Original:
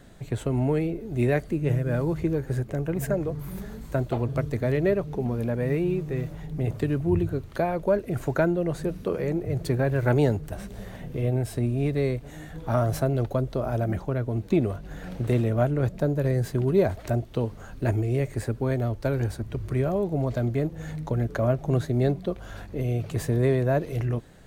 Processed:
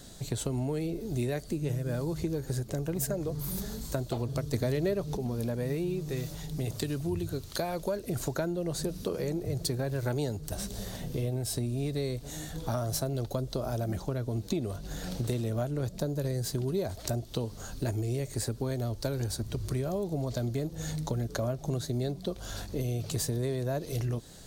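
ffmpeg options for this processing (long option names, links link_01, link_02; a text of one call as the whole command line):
ffmpeg -i in.wav -filter_complex "[0:a]asettb=1/sr,asplit=3[link_01][link_02][link_03];[link_01]atrim=end=6.094[link_04];[link_02]atrim=start=6.09:end=8,asetpts=PTS-STARTPTS,afade=type=in:duration=0.004:curve=qsin,afade=type=out:start_time=1.906:duration=0.004:curve=qsin,tiltshelf=frequency=1300:gain=-3[link_05];[link_03]atrim=start=7.996[link_06];[link_04][link_05]acrossfade=duration=0.004:curve1=hsin:curve2=qsin[link_07];[link_07][link_06]acrossfade=duration=0.004:curve1=qsin:curve2=hsin,asplit=3[link_08][link_09][link_10];[link_08]atrim=end=4.542[link_11];[link_09]atrim=start=4.538:end=5.172,asetpts=PTS-STARTPTS,volume=9.5dB[link_12];[link_10]atrim=start=5.168[link_13];[link_11][link_12]acrossfade=duration=0.004:curve1=hsin:curve2=hsin[link_14];[link_14][link_13]acrossfade=duration=0.004:curve1=hsin:curve2=hsin,highshelf=frequency=3200:width_type=q:width=1.5:gain=11,acompressor=threshold=-29dB:ratio=4" out.wav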